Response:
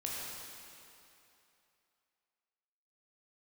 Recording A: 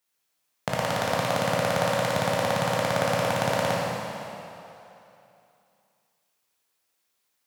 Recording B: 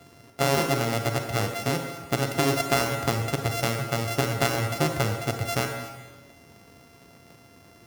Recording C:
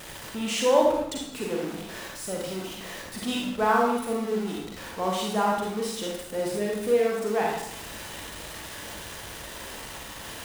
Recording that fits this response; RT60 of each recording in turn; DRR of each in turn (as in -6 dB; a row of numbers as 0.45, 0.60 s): A; 2.9, 1.4, 0.75 s; -4.5, 4.5, -2.0 dB